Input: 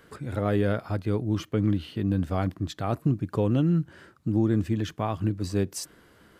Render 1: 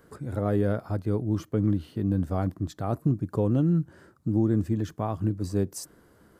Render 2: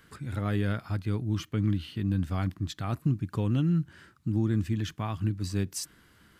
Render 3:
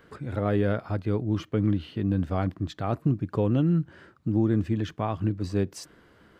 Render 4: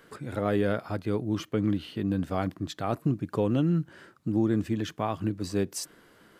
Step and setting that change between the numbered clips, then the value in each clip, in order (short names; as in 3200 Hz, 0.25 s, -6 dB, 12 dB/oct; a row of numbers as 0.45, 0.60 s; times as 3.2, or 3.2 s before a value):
bell, frequency: 2800, 530, 12000, 60 Hz